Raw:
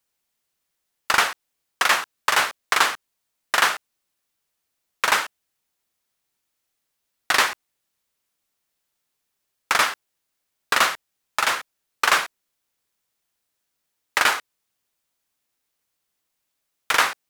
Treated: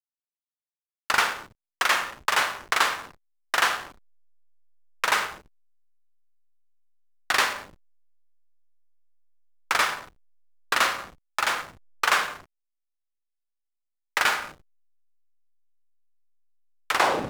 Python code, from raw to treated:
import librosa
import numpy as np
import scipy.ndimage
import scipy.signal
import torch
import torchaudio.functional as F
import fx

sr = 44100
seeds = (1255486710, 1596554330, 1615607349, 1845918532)

y = fx.tape_stop_end(x, sr, length_s=0.4)
y = fx.hum_notches(y, sr, base_hz=50, count=6)
y = fx.rev_schroeder(y, sr, rt60_s=0.93, comb_ms=31, drr_db=7.0)
y = fx.backlash(y, sr, play_db=-26.5)
y = y * 10.0 ** (-3.5 / 20.0)